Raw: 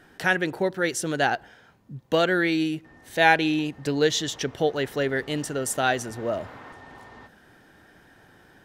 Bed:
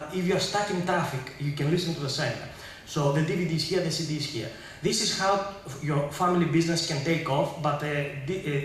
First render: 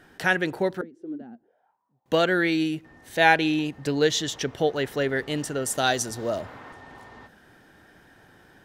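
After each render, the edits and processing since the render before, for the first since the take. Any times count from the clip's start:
0:00.81–0:02.06: envelope filter 230–1,100 Hz, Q 8.7, down, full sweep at −21.5 dBFS
0:05.77–0:06.41: high shelf with overshoot 3,300 Hz +7 dB, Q 1.5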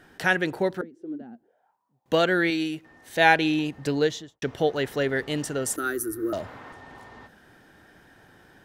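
0:02.50–0:03.16: low-shelf EQ 240 Hz −8 dB
0:03.91–0:04.42: fade out and dull
0:05.76–0:06.33: drawn EQ curve 100 Hz 0 dB, 160 Hz −29 dB, 330 Hz +12 dB, 590 Hz −20 dB, 900 Hz −23 dB, 1,300 Hz +2 dB, 3,000 Hz −21 dB, 4,300 Hz −20 dB, 7,500 Hz −13 dB, 11,000 Hz +10 dB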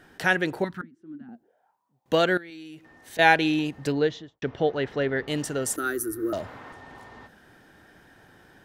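0:00.64–0:01.29: drawn EQ curve 250 Hz 0 dB, 490 Hz −24 dB, 1,200 Hz +2 dB, 5,600 Hz −7 dB
0:02.37–0:03.19: downward compressor 20 to 1, threshold −38 dBFS
0:03.92–0:05.28: high-frequency loss of the air 180 metres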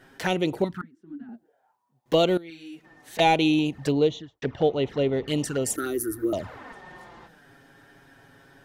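in parallel at −6.5 dB: gain into a clipping stage and back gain 18 dB
on the sum: flanger swept by the level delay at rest 8.5 ms, full sweep at −20.5 dBFS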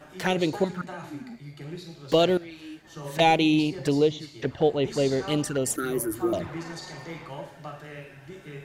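mix in bed −13 dB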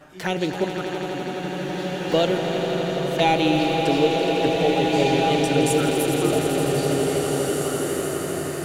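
echo that builds up and dies away 83 ms, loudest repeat 5, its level −10.5 dB
slow-attack reverb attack 1,940 ms, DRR 0 dB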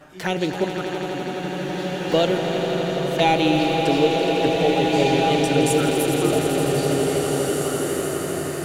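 level +1 dB

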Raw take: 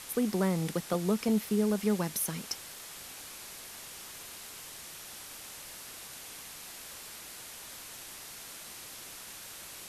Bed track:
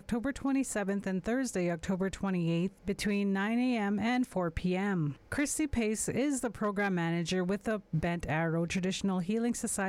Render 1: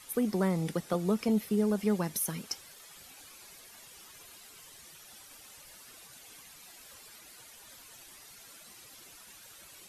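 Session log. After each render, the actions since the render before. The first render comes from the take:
broadband denoise 11 dB, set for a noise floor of −47 dBFS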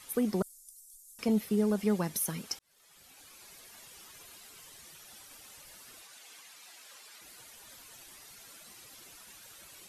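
0:00.42–0:01.19: inverse Chebyshev band-stop filter 130–1,400 Hz, stop band 80 dB
0:02.59–0:03.88: fade in equal-power
0:06.02–0:07.21: meter weighting curve A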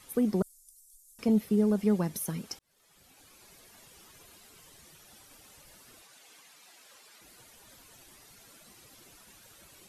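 tilt shelving filter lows +4 dB, about 660 Hz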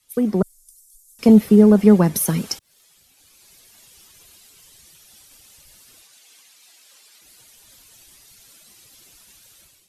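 automatic gain control gain up to 8 dB
multiband upward and downward expander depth 70%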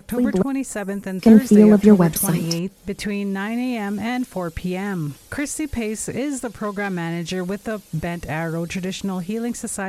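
mix in bed track +6 dB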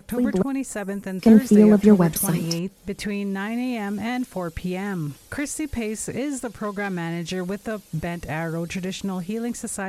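level −2.5 dB

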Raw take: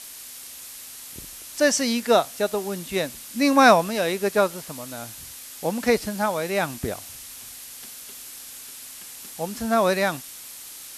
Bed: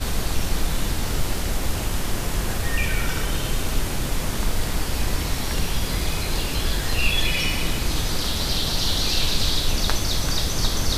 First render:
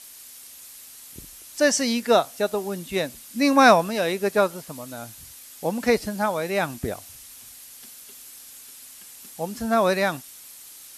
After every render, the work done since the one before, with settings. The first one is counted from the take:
broadband denoise 6 dB, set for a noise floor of −41 dBFS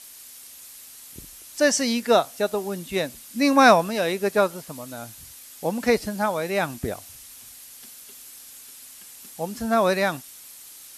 no processing that can be heard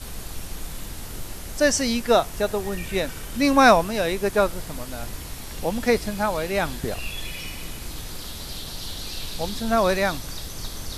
mix in bed −11.5 dB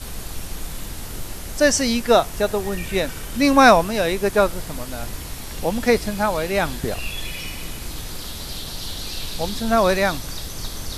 level +3 dB
brickwall limiter −1 dBFS, peak gain reduction 1 dB

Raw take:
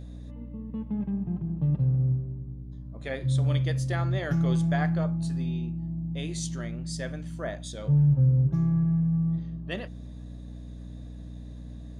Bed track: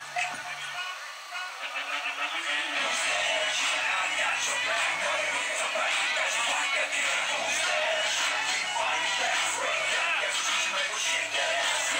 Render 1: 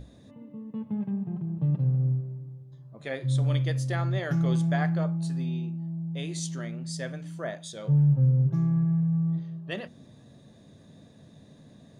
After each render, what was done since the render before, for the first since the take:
mains-hum notches 60/120/180/240/300 Hz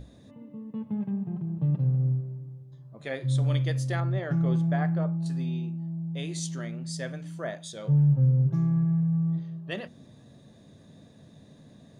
0:04.00–0:05.26: low-pass filter 1,400 Hz 6 dB per octave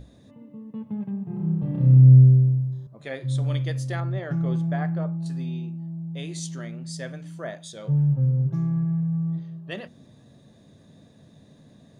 0:01.24–0:02.87: flutter between parallel walls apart 5.3 metres, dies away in 1.3 s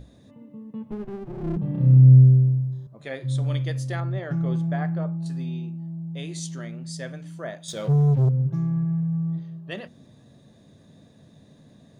0:00.91–0:01.57: lower of the sound and its delayed copy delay 8.1 ms
0:07.68–0:08.29: leveller curve on the samples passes 2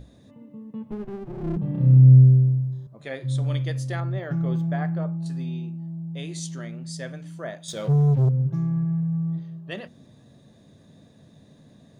0:04.19–0:04.73: linearly interpolated sample-rate reduction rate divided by 2×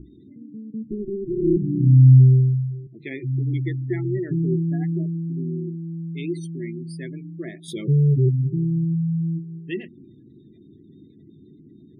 drawn EQ curve 110 Hz 0 dB, 240 Hz +4 dB, 360 Hz +15 dB, 520 Hz −14 dB, 850 Hz −8 dB, 1,500 Hz −10 dB, 2,100 Hz +7 dB, 3,100 Hz +1 dB, 7,300 Hz −10 dB, 11,000 Hz +10 dB
gate on every frequency bin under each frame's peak −25 dB strong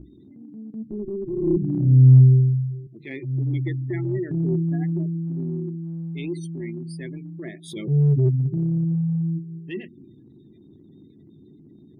transient designer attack −6 dB, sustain −1 dB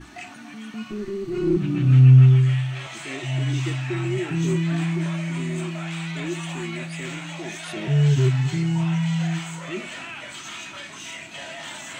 mix in bed track −9 dB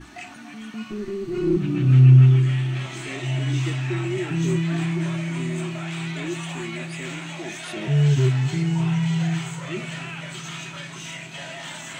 echo machine with several playback heads 304 ms, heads first and second, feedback 71%, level −20.5 dB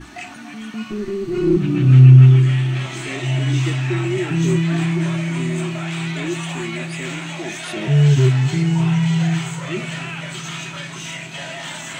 level +5 dB
brickwall limiter −1 dBFS, peak gain reduction 1 dB

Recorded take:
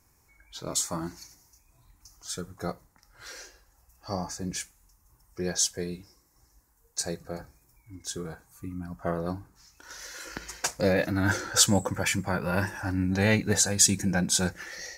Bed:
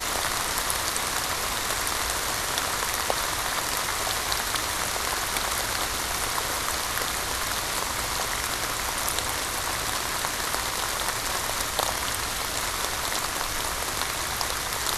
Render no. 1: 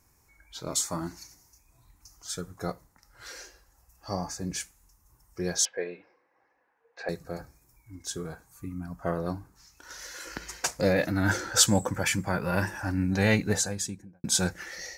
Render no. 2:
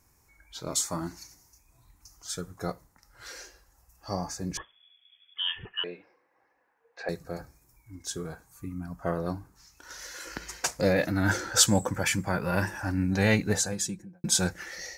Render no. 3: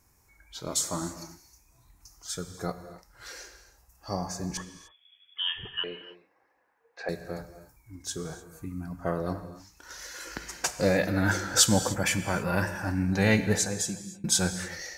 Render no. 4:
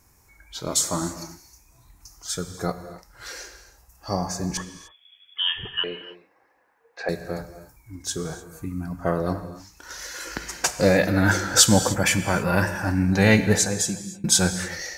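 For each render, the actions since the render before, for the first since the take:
0:05.65–0:07.09: loudspeaker in its box 400–2,900 Hz, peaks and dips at 510 Hz +10 dB, 750 Hz +5 dB, 1,700 Hz +7 dB, 2,400 Hz +6 dB; 0:13.36–0:14.24: fade out and dull
0:04.57–0:05.84: voice inversion scrambler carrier 3,400 Hz; 0:13.72–0:14.34: comb filter 5.8 ms
reverb whose tail is shaped and stops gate 320 ms flat, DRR 10 dB
level +6 dB; brickwall limiter −2 dBFS, peak gain reduction 1.5 dB

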